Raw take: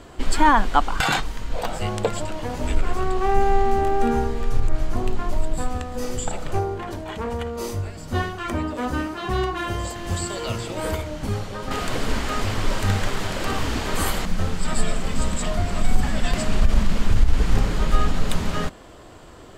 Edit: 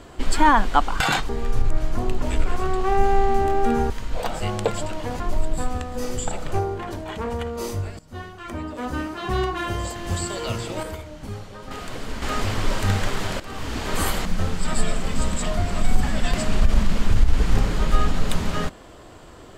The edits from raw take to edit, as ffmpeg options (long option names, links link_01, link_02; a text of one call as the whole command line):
ffmpeg -i in.wav -filter_complex "[0:a]asplit=9[link_01][link_02][link_03][link_04][link_05][link_06][link_07][link_08][link_09];[link_01]atrim=end=1.292[link_10];[link_02]atrim=start=4.268:end=5.202[link_11];[link_03]atrim=start=2.588:end=4.272[link_12];[link_04]atrim=start=1.288:end=2.592[link_13];[link_05]atrim=start=5.198:end=7.99,asetpts=PTS-STARTPTS,afade=type=out:start_time=2.788:duration=0.004:curve=hsin:silence=0.141254[link_14];[link_06]atrim=start=7.99:end=10.832,asetpts=PTS-STARTPTS,afade=type=in:duration=1.34:silence=0.141254[link_15];[link_07]atrim=start=10.828:end=12.222,asetpts=PTS-STARTPTS,volume=-7.5dB[link_16];[link_08]atrim=start=12.218:end=13.4,asetpts=PTS-STARTPTS,afade=type=out:start_time=1.178:duration=0.004:curve=hsin:silence=0.16788[link_17];[link_09]atrim=start=13.4,asetpts=PTS-STARTPTS,afade=type=in:duration=0.56:silence=0.16788[link_18];[link_10][link_11]acrossfade=duration=0.004:curve1=hsin:curve2=hsin[link_19];[link_19][link_12]acrossfade=duration=0.004:curve1=hsin:curve2=hsin[link_20];[link_20][link_13]acrossfade=duration=0.004:curve1=hsin:curve2=hsin[link_21];[link_14][link_15]concat=n=2:v=0:a=1[link_22];[link_21][link_22]acrossfade=duration=0.004:curve1=hsin:curve2=hsin[link_23];[link_23][link_16]acrossfade=duration=0.004:curve1=hsin:curve2=hsin[link_24];[link_17][link_18]concat=n=2:v=0:a=1[link_25];[link_24][link_25]acrossfade=duration=0.004:curve1=hsin:curve2=hsin" out.wav